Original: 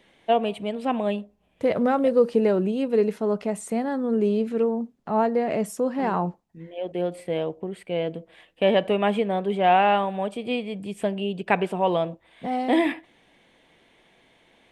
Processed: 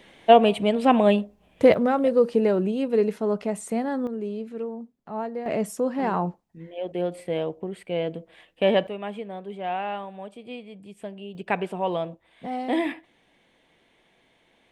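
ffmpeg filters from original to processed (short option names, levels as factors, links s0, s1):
-af "asetnsamples=n=441:p=0,asendcmd='1.74 volume volume -0.5dB;4.07 volume volume -9dB;5.46 volume volume -0.5dB;8.87 volume volume -11dB;11.35 volume volume -4dB',volume=2.24"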